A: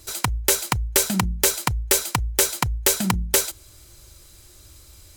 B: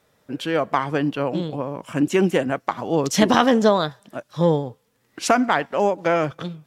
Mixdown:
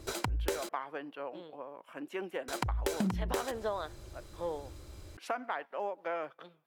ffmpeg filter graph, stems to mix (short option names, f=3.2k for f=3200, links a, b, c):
-filter_complex "[0:a]lowpass=f=2k:p=1,equalizer=f=350:w=0.47:g=6.5,alimiter=limit=-13.5dB:level=0:latency=1:release=206,volume=-0.5dB,asplit=3[a][b][c];[a]atrim=end=0.69,asetpts=PTS-STARTPTS,afade=t=out:st=0.686:d=0.004:c=hsin[d];[b]atrim=start=0.69:end=2.48,asetpts=PTS-STARTPTS,volume=0[e];[c]atrim=start=2.48,asetpts=PTS-STARTPTS,afade=t=in:d=0.004:c=hsin[f];[d][e][f]concat=n=3:v=0:a=1[g];[1:a]highpass=500,equalizer=f=6.8k:t=o:w=1.4:g=-15,volume=-13.5dB[h];[g][h]amix=inputs=2:normalize=0,acompressor=threshold=-29dB:ratio=6"